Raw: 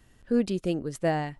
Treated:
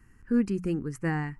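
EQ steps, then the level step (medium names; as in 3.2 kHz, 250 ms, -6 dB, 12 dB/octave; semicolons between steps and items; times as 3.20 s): treble shelf 4.8 kHz -7 dB; hum notches 60/120/180 Hz; static phaser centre 1.5 kHz, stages 4; +3.0 dB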